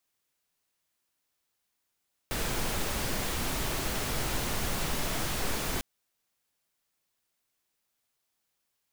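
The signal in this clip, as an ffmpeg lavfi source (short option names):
-f lavfi -i "anoisesrc=c=pink:a=0.145:d=3.5:r=44100:seed=1"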